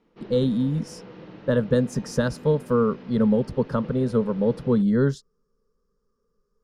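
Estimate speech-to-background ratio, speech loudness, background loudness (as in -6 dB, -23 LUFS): 19.5 dB, -23.5 LUFS, -43.0 LUFS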